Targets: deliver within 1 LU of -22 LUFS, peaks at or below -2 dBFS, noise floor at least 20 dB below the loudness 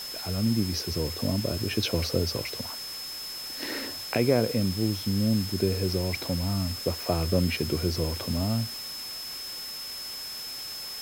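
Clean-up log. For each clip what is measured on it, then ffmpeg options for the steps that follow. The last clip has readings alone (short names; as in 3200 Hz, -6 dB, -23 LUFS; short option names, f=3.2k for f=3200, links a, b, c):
steady tone 5200 Hz; tone level -36 dBFS; noise floor -38 dBFS; noise floor target -49 dBFS; loudness -28.5 LUFS; peak -10.0 dBFS; loudness target -22.0 LUFS
-> -af "bandreject=f=5.2k:w=30"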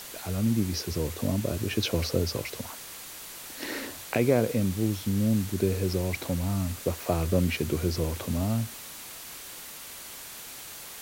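steady tone none; noise floor -43 dBFS; noise floor target -50 dBFS
-> -af "afftdn=nr=7:nf=-43"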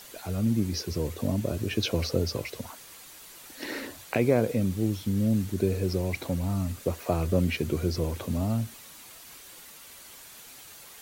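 noise floor -48 dBFS; noise floor target -49 dBFS
-> -af "afftdn=nr=6:nf=-48"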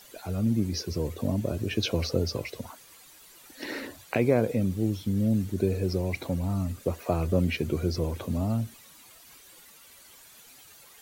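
noise floor -53 dBFS; loudness -29.0 LUFS; peak -11.0 dBFS; loudness target -22.0 LUFS
-> -af "volume=7dB"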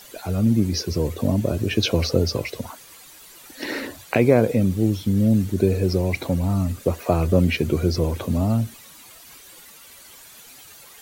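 loudness -22.0 LUFS; peak -4.0 dBFS; noise floor -46 dBFS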